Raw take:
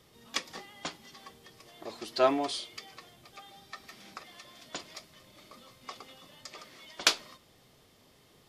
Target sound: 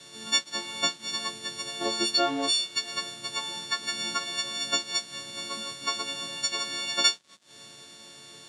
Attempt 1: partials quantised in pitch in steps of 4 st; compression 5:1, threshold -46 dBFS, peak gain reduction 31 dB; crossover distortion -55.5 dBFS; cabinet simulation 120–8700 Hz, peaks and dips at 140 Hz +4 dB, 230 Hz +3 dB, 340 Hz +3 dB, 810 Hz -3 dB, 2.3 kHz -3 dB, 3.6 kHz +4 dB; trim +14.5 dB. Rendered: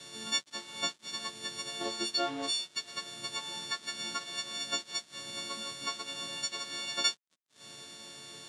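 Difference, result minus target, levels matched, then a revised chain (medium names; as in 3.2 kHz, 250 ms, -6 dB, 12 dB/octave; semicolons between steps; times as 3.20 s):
compression: peak gain reduction +6 dB
partials quantised in pitch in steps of 4 st; compression 5:1, threshold -38.5 dBFS, peak gain reduction 25 dB; crossover distortion -55.5 dBFS; cabinet simulation 120–8700 Hz, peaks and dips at 140 Hz +4 dB, 230 Hz +3 dB, 340 Hz +3 dB, 810 Hz -3 dB, 2.3 kHz -3 dB, 3.6 kHz +4 dB; trim +14.5 dB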